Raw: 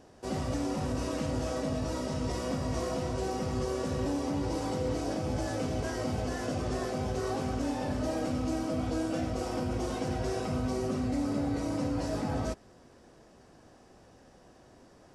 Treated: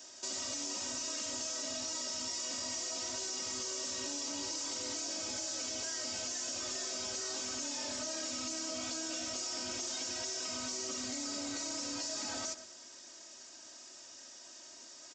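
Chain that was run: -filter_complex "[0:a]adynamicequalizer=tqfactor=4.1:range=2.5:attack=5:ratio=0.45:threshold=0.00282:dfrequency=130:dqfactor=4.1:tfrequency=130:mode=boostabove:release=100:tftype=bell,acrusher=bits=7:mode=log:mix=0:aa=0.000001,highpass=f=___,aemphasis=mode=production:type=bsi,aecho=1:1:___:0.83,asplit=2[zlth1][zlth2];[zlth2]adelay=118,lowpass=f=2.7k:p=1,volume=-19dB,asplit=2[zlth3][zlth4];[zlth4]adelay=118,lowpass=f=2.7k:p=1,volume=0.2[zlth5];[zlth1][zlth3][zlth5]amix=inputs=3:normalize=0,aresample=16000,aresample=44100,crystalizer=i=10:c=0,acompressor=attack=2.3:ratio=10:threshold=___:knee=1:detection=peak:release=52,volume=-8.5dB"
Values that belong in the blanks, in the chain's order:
74, 3.2, -27dB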